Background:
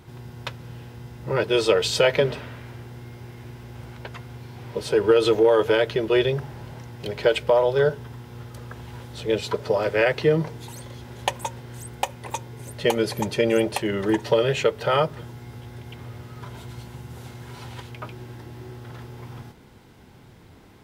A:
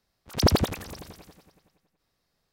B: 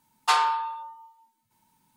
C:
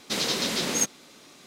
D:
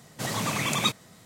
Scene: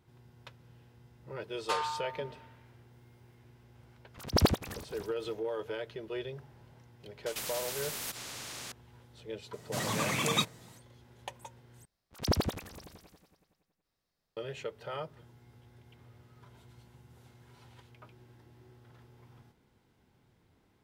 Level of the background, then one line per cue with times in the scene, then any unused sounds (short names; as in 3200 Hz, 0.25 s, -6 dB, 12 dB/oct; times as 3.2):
background -18.5 dB
1.41 add B -11.5 dB
3.9 add A -1.5 dB + beating tremolo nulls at 3.6 Hz
7.26 add C -13.5 dB + spectral compressor 10:1
9.53 add D -4 dB
11.85 replace with A -8.5 dB